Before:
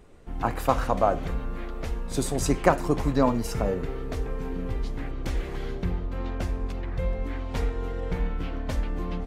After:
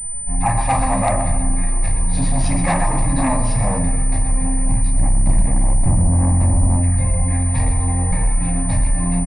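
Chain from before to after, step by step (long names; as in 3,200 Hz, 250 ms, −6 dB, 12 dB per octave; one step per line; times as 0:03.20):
0:04.96–0:06.77: tilt shelving filter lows +8.5 dB, about 1,300 Hz
repeating echo 126 ms, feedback 44%, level −9 dB
flanger 1.7 Hz, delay 8.6 ms, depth 3.3 ms, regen +24%
mains-hum notches 60/120/180/240/300/360/420/480 Hz
convolution reverb RT60 0.30 s, pre-delay 4 ms, DRR −2 dB
in parallel at −11 dB: sine wavefolder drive 12 dB, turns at −6 dBFS
on the sum: log-companded quantiser 8 bits
phaser with its sweep stopped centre 2,100 Hz, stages 8
switching amplifier with a slow clock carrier 9,000 Hz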